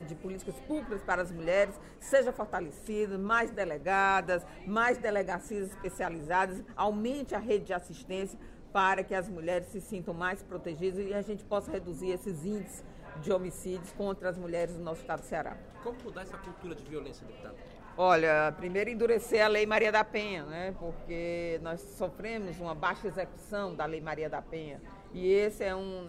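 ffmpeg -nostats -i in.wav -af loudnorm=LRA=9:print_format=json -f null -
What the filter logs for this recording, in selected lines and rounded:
"input_i" : "-32.6",
"input_tp" : "-12.0",
"input_lra" : "8.0",
"input_thresh" : "-43.0",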